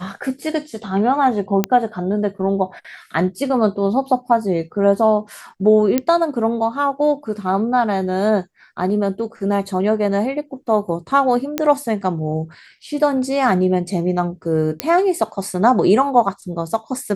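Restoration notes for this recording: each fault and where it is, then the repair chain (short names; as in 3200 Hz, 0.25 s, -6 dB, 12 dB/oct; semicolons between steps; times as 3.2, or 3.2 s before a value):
1.64 pop -3 dBFS
5.98 pop -4 dBFS
11.58 pop -4 dBFS
14.8 pop -2 dBFS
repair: de-click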